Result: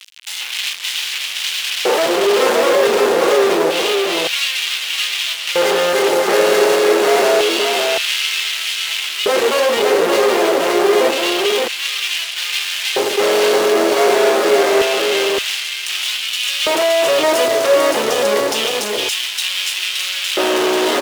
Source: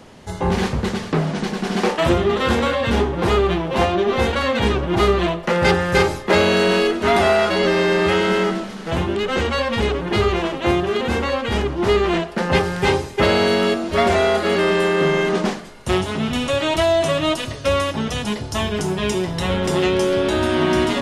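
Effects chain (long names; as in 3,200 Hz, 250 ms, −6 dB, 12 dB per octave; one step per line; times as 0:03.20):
fuzz pedal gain 41 dB, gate −37 dBFS
auto-filter high-pass square 0.27 Hz 440–2,900 Hz
on a send: single-tap delay 569 ms −3.5 dB
on the sum: level −4 dB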